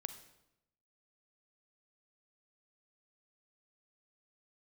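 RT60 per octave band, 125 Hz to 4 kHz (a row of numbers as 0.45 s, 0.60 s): 1.0 s, 0.95 s, 0.90 s, 0.85 s, 0.75 s, 0.70 s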